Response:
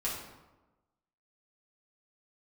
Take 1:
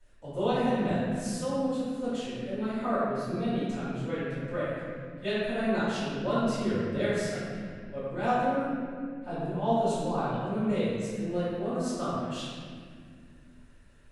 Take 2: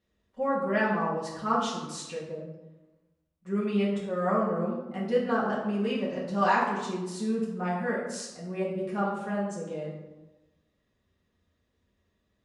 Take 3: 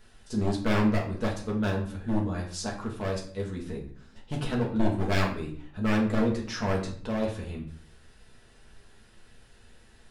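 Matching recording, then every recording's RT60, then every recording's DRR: 2; 2.0, 1.1, 0.55 seconds; −16.0, −6.5, −2.5 decibels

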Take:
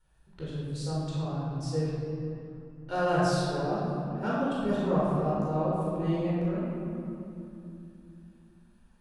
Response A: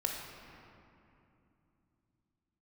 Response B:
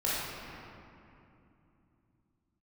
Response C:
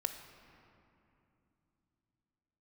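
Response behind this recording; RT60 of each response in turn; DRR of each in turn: B; 2.8, 2.8, 2.8 seconds; 0.5, −8.5, 7.0 decibels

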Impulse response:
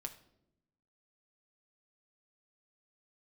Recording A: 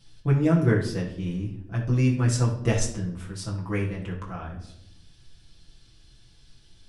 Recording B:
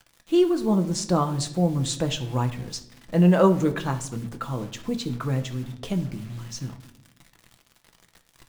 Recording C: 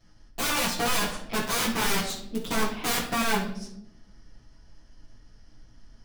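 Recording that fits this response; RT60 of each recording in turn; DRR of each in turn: B; 0.80, 0.80, 0.80 seconds; −4.5, 5.5, −11.5 decibels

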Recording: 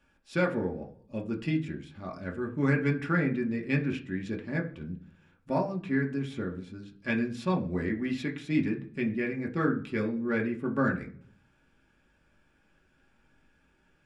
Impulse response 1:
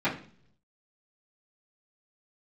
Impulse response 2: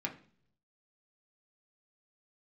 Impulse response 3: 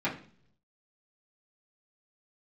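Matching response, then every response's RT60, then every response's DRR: 2; 0.50, 0.50, 0.50 seconds; −15.0, −0.5, −10.5 decibels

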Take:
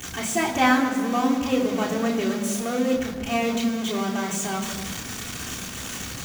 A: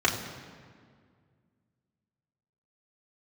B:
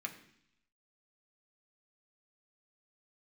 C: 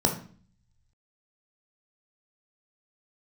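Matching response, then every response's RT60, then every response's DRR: A; 2.0, 0.70, 0.45 seconds; −3.5, 2.0, 3.0 decibels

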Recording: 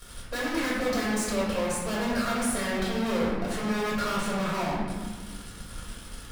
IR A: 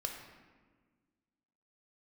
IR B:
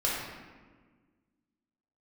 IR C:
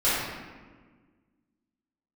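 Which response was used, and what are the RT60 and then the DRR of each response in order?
B; 1.5, 1.5, 1.5 seconds; 1.0, −7.0, −14.5 decibels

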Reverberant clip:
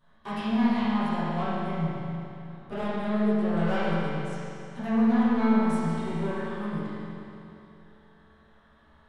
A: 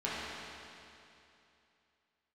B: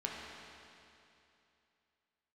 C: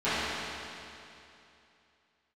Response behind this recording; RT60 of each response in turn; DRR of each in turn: C; 2.8, 2.8, 2.8 seconds; −9.5, −3.0, −17.5 decibels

